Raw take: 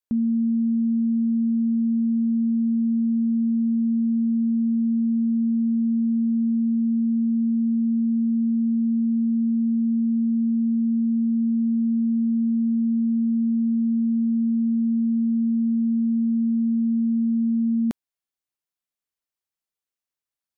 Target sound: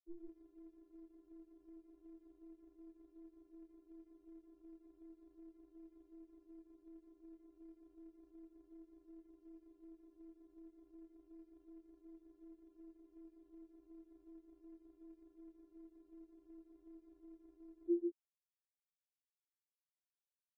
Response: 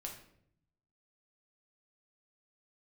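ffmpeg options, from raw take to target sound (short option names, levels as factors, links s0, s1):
-filter_complex "[0:a]afftfilt=real='re*gte(hypot(re,im),0.1)':imag='im*gte(hypot(re,im),0.1)':win_size=1024:overlap=0.75,bass=f=250:g=-13,treble=f=4000:g=8,flanger=delay=15.5:depth=7.6:speed=2.7,asplit=2[s0][s1];[s1]aecho=0:1:40.82|142.9:0.398|0.631[s2];[s0][s2]amix=inputs=2:normalize=0,afftfilt=real='re*4*eq(mod(b,16),0)':imag='im*4*eq(mod(b,16),0)':win_size=2048:overlap=0.75,volume=6.31"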